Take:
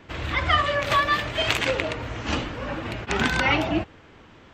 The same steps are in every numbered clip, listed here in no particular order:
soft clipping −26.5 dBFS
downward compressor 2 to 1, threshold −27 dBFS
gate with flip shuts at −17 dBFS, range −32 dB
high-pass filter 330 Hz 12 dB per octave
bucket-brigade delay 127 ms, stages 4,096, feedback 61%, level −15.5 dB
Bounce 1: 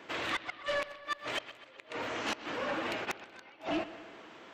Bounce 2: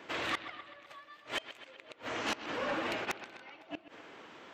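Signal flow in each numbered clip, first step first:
high-pass filter, then downward compressor, then gate with flip, then soft clipping, then bucket-brigade delay
high-pass filter, then gate with flip, then bucket-brigade delay, then soft clipping, then downward compressor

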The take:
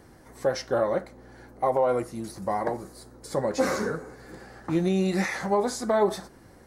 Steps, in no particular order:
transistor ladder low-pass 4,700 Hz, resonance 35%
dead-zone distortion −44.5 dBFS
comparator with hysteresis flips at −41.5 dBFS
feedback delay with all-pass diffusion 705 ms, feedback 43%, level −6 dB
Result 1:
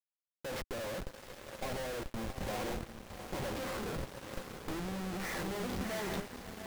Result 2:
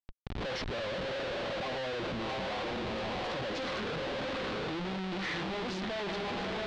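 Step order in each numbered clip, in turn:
transistor ladder low-pass, then comparator with hysteresis, then feedback delay with all-pass diffusion, then dead-zone distortion
feedback delay with all-pass diffusion, then comparator with hysteresis, then dead-zone distortion, then transistor ladder low-pass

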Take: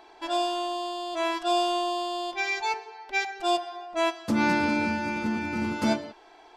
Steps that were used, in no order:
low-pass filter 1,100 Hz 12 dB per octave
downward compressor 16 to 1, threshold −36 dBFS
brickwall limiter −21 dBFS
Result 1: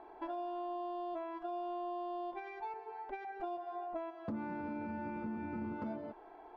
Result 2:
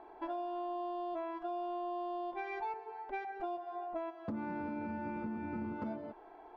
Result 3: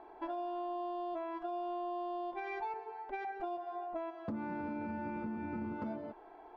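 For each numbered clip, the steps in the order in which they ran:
brickwall limiter, then downward compressor, then low-pass filter
low-pass filter, then brickwall limiter, then downward compressor
brickwall limiter, then low-pass filter, then downward compressor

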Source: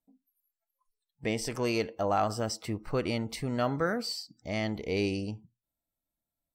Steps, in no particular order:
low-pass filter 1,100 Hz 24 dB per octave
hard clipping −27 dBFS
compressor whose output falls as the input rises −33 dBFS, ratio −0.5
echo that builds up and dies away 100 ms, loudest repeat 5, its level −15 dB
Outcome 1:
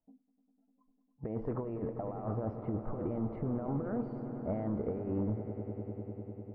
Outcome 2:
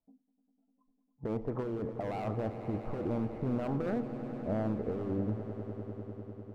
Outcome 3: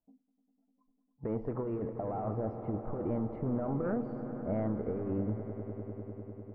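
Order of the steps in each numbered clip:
compressor whose output falls as the input rises, then echo that builds up and dies away, then hard clipping, then low-pass filter
low-pass filter, then hard clipping, then compressor whose output falls as the input rises, then echo that builds up and dies away
hard clipping, then low-pass filter, then compressor whose output falls as the input rises, then echo that builds up and dies away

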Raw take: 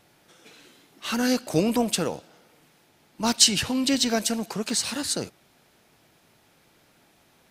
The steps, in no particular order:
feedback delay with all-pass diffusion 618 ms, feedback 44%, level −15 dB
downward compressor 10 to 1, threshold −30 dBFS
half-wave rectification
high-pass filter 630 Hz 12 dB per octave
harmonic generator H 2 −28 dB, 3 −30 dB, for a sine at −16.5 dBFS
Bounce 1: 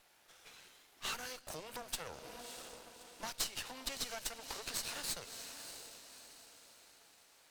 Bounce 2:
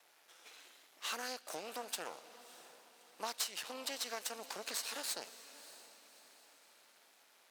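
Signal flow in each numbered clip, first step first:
feedback delay with all-pass diffusion, then downward compressor, then high-pass filter, then half-wave rectification, then harmonic generator
downward compressor, then half-wave rectification, then high-pass filter, then harmonic generator, then feedback delay with all-pass diffusion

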